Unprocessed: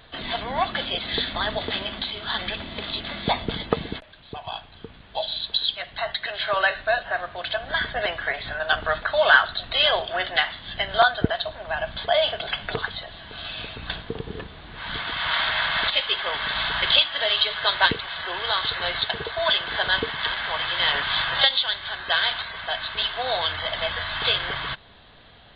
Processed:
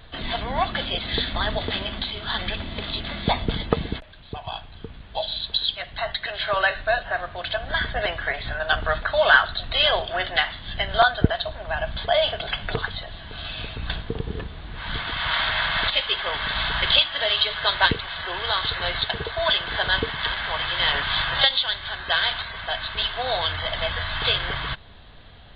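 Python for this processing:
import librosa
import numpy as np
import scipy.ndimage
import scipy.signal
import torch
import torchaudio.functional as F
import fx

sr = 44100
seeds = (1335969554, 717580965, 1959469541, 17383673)

y = fx.low_shelf(x, sr, hz=110.0, db=11.5)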